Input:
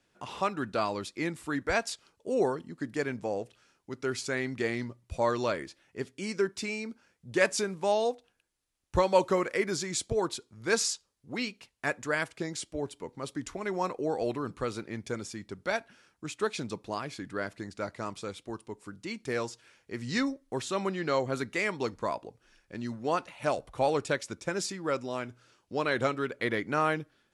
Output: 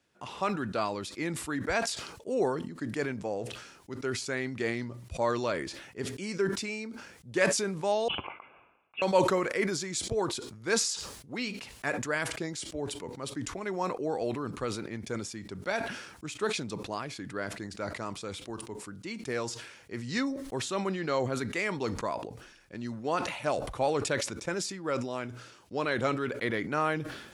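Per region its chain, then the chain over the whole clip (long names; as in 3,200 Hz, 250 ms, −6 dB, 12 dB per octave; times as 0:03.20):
0:08.08–0:09.02: high-pass filter 1,200 Hz + phaser with its sweep stopped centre 2,700 Hz, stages 8 + voice inversion scrambler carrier 3,700 Hz
whole clip: high-pass filter 40 Hz; level that may fall only so fast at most 59 dB per second; level −1.5 dB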